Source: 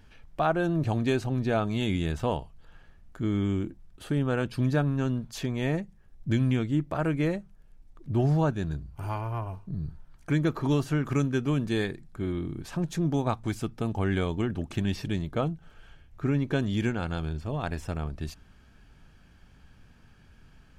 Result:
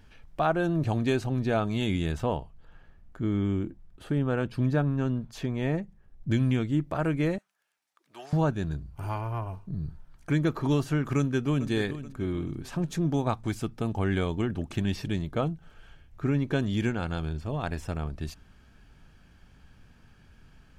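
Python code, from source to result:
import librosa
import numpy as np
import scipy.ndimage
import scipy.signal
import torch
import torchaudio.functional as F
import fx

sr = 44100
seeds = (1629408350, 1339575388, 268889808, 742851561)

y = fx.high_shelf(x, sr, hz=3100.0, db=-8.0, at=(2.23, 6.3))
y = fx.highpass(y, sr, hz=1200.0, slope=12, at=(7.38, 8.33))
y = fx.echo_throw(y, sr, start_s=11.17, length_s=0.52, ms=430, feedback_pct=45, wet_db=-13.0)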